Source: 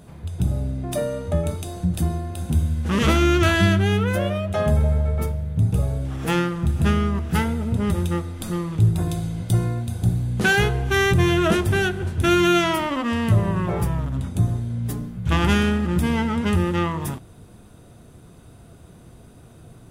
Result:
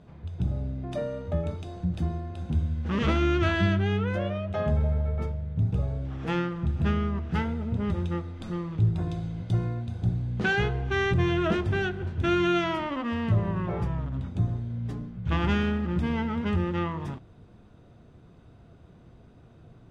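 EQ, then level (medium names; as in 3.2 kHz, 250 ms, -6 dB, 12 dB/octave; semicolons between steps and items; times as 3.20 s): distance through air 160 m; -6.0 dB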